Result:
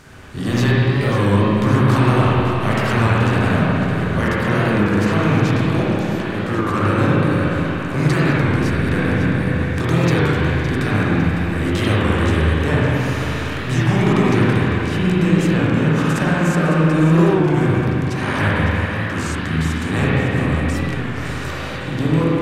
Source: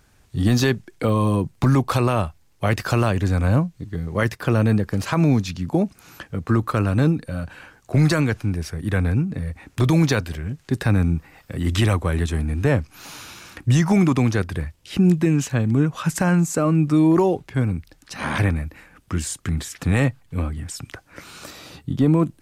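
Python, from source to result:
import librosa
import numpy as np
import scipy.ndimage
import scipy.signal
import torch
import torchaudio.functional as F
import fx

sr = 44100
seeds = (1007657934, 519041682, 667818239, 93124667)

y = fx.bin_compress(x, sr, power=0.6)
y = fx.peak_eq(y, sr, hz=2100.0, db=3.5, octaves=2.1)
y = fx.echo_split(y, sr, split_hz=870.0, low_ms=99, high_ms=555, feedback_pct=52, wet_db=-11)
y = fx.rev_spring(y, sr, rt60_s=3.6, pass_ms=(38, 50, 58), chirp_ms=55, drr_db=-8.0)
y = fx.record_warp(y, sr, rpm=33.33, depth_cents=100.0)
y = F.gain(torch.from_numpy(y), -9.0).numpy()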